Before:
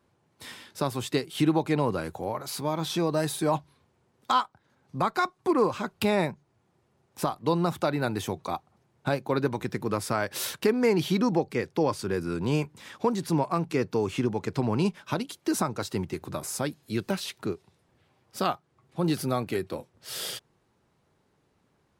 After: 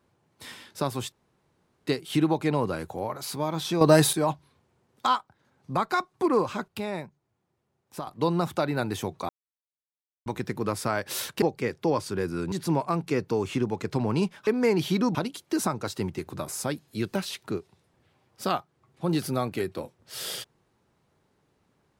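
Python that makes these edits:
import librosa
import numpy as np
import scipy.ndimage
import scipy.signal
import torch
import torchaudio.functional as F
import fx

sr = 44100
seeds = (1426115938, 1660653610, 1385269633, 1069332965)

y = fx.edit(x, sr, fx.insert_room_tone(at_s=1.12, length_s=0.75),
    fx.clip_gain(start_s=3.06, length_s=0.32, db=9.5),
    fx.clip_gain(start_s=5.93, length_s=1.39, db=-8.0),
    fx.silence(start_s=8.54, length_s=0.97),
    fx.move(start_s=10.67, length_s=0.68, to_s=15.1),
    fx.cut(start_s=12.45, length_s=0.7), tone=tone)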